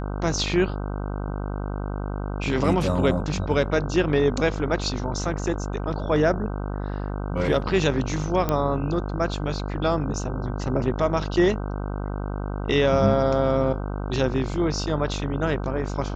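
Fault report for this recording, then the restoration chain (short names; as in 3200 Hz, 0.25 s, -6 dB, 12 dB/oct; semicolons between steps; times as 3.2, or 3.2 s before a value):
buzz 50 Hz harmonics 31 -29 dBFS
8.49 pop -10 dBFS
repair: de-click; de-hum 50 Hz, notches 31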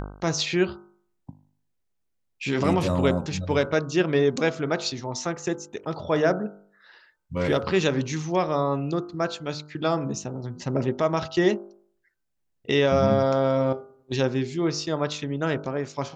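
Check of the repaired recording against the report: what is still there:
none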